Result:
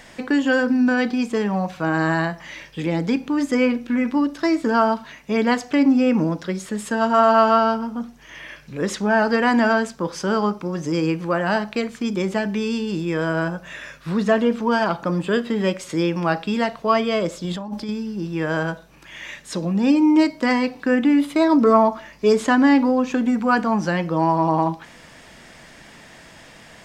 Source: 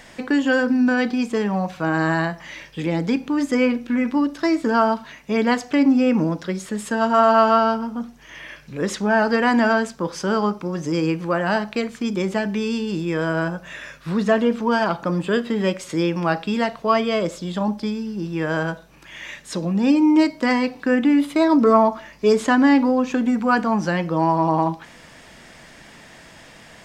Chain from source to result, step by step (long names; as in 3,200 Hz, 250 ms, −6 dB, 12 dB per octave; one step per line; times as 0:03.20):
0:17.44–0:17.89: compressor whose output falls as the input rises −28 dBFS, ratio −1